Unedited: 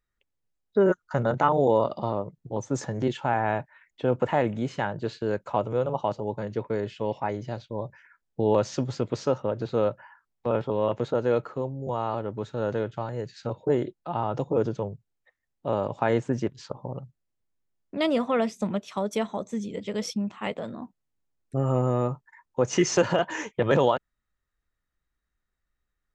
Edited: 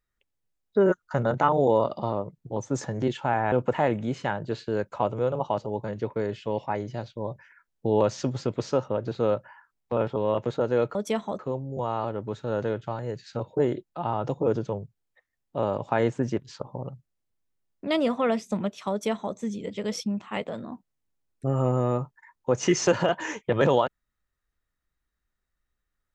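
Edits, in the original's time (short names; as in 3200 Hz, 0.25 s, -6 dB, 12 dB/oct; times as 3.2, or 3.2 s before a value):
3.52–4.06 cut
19.01–19.45 copy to 11.49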